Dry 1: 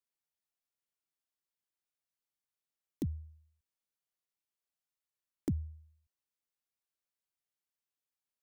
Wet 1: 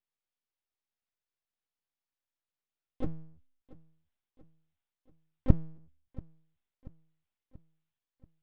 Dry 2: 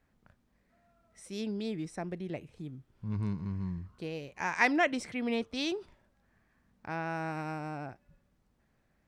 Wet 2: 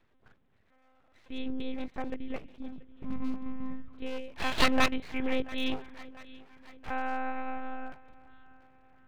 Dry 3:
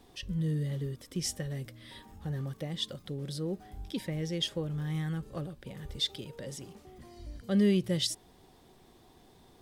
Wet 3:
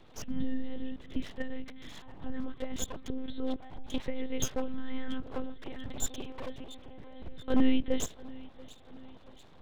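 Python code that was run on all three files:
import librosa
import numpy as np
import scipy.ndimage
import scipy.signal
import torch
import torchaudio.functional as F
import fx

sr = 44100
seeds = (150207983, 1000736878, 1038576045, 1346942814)

y = fx.lpc_monotone(x, sr, seeds[0], pitch_hz=260.0, order=10)
y = fx.echo_feedback(y, sr, ms=684, feedback_pct=52, wet_db=-20.5)
y = np.abs(y)
y = F.gain(torch.from_numpy(y), 4.0).numpy()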